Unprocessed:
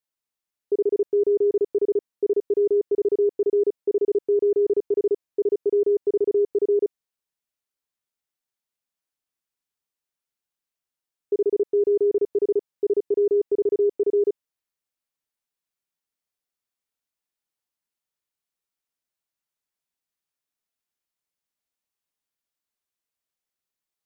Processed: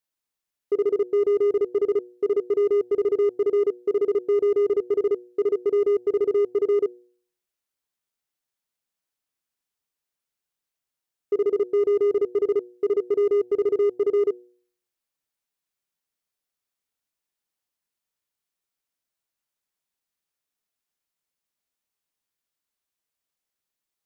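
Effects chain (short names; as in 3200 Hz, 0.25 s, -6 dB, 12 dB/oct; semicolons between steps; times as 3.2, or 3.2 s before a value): de-hum 120.9 Hz, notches 7; in parallel at -5 dB: overloaded stage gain 25.5 dB; on the sum: gain -2 dB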